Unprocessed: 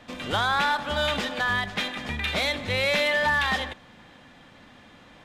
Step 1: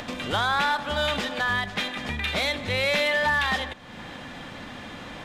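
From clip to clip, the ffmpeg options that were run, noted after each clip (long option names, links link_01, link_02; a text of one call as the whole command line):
ffmpeg -i in.wav -af "acompressor=mode=upward:threshold=-27dB:ratio=2.5" out.wav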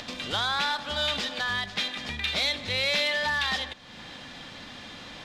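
ffmpeg -i in.wav -af "equalizer=frequency=4600:width=0.88:gain=11,volume=-6.5dB" out.wav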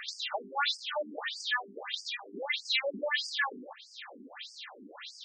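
ffmpeg -i in.wav -af "afftfilt=real='re*between(b*sr/1024,290*pow(6600/290,0.5+0.5*sin(2*PI*1.6*pts/sr))/1.41,290*pow(6600/290,0.5+0.5*sin(2*PI*1.6*pts/sr))*1.41)':imag='im*between(b*sr/1024,290*pow(6600/290,0.5+0.5*sin(2*PI*1.6*pts/sr))/1.41,290*pow(6600/290,0.5+0.5*sin(2*PI*1.6*pts/sr))*1.41)':win_size=1024:overlap=0.75,volume=4dB" out.wav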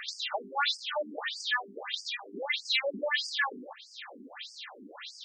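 ffmpeg -i in.wav -af "acontrast=76,volume=-5.5dB" out.wav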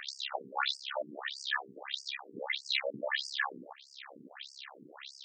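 ffmpeg -i in.wav -af "tremolo=f=68:d=0.974" out.wav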